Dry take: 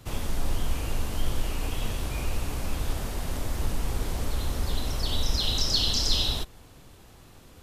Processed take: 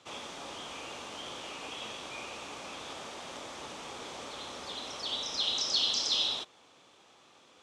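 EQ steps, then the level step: speaker cabinet 310–8200 Hz, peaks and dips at 560 Hz +3 dB, 850 Hz +4 dB, 1200 Hz +6 dB, 2400 Hz +5 dB, 3400 Hz +8 dB, 6000 Hz +4 dB; -7.0 dB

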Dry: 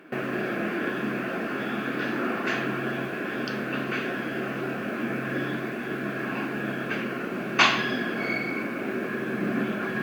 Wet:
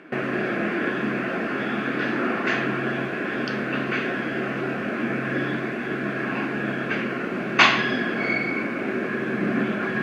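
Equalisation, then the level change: air absorption 56 m; bell 2000 Hz +4 dB 0.3 oct; +3.5 dB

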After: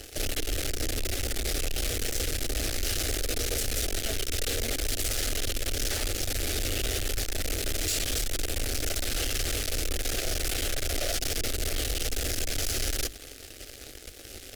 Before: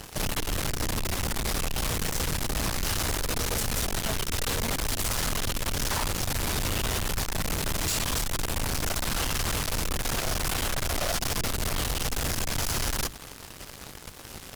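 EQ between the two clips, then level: high shelf 11000 Hz -3.5 dB; fixed phaser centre 410 Hz, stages 4; +1.0 dB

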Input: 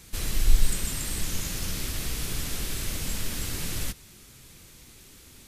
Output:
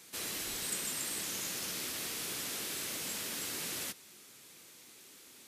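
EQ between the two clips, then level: HPF 300 Hz 12 dB/oct; -3.5 dB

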